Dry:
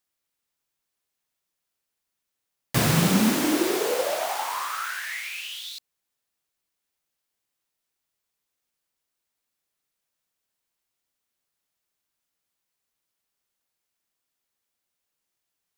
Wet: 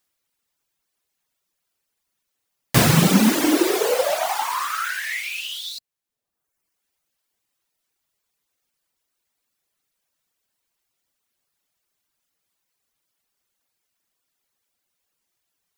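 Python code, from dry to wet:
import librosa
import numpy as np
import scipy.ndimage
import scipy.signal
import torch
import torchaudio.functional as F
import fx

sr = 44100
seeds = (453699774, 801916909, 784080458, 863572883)

y = fx.dereverb_blind(x, sr, rt60_s=1.0)
y = y * 10.0 ** (7.0 / 20.0)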